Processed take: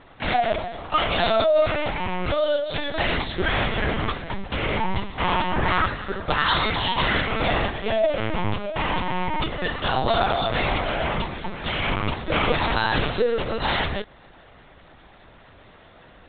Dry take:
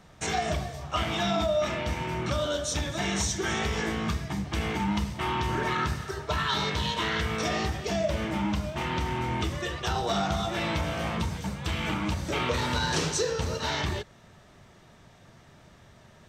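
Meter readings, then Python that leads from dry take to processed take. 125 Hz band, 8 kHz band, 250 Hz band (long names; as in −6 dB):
+1.5 dB, below −40 dB, +1.5 dB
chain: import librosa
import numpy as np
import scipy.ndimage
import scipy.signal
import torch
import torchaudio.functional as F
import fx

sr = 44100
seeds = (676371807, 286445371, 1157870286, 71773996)

y = scipy.signal.sosfilt(scipy.signal.butter(2, 230.0, 'highpass', fs=sr, output='sos'), x)
y = fx.lpc_vocoder(y, sr, seeds[0], excitation='pitch_kept', order=10)
y = y * 10.0 ** (8.0 / 20.0)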